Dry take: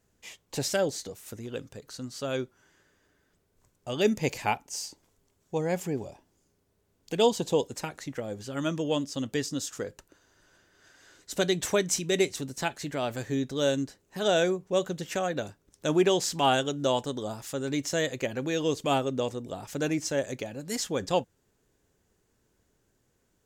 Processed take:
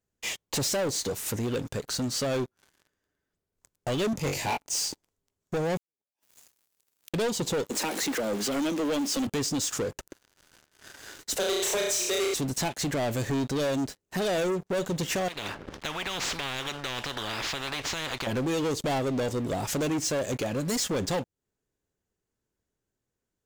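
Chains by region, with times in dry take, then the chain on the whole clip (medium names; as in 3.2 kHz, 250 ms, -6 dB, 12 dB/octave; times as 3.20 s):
4.13–4.57 s: flutter echo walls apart 3.6 m, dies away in 0.22 s + three bands expanded up and down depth 40%
5.77–7.14 s: tilt EQ +4.5 dB/octave + compression 5:1, threshold -50 dBFS + inverted gate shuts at -42 dBFS, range -37 dB
7.70–9.27 s: jump at every zero crossing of -39.5 dBFS + Chebyshev high-pass 200 Hz, order 5
11.36–12.34 s: elliptic high-pass 400 Hz + flutter echo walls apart 5.7 m, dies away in 0.57 s
15.28–18.27 s: Bessel low-pass 2.2 kHz, order 4 + compression 4:1, threshold -33 dBFS + spectrum-flattening compressor 10:1
whole clip: dynamic bell 1.4 kHz, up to -6 dB, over -46 dBFS, Q 1.5; compression 2:1, threshold -38 dBFS; waveshaping leveller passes 5; trim -4 dB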